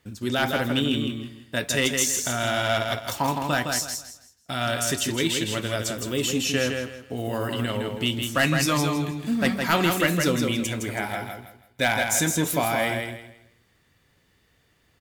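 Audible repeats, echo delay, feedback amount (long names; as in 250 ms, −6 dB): 3, 162 ms, 28%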